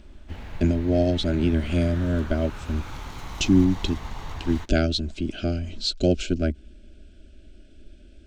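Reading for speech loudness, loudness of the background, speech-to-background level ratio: -24.5 LUFS, -39.0 LUFS, 14.5 dB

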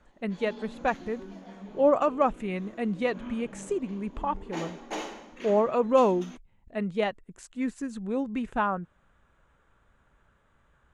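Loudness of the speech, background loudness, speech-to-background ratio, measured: -28.5 LUFS, -43.5 LUFS, 15.0 dB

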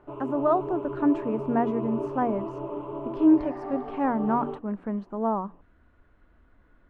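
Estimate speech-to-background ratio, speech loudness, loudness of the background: 7.5 dB, -27.0 LUFS, -34.5 LUFS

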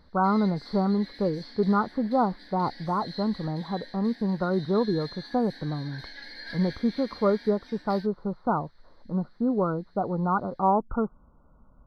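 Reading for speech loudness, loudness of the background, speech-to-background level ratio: -27.5 LUFS, -44.5 LUFS, 17.0 dB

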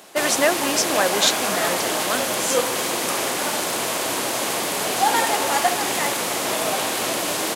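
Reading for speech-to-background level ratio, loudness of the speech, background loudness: -1.5 dB, -23.0 LUFS, -21.5 LUFS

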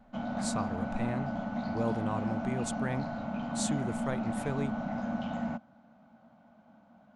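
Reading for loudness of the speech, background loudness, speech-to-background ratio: -37.5 LUFS, -35.0 LUFS, -2.5 dB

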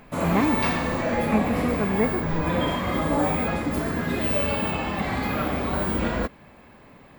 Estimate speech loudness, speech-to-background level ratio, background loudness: -27.5 LUFS, -2.5 dB, -25.0 LUFS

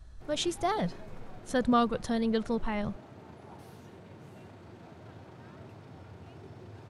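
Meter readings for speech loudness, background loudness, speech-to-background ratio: -30.5 LUFS, -50.0 LUFS, 19.5 dB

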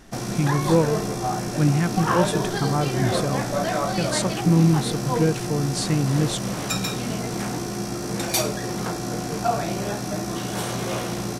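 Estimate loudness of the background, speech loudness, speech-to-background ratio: -26.5 LUFS, -24.0 LUFS, 2.5 dB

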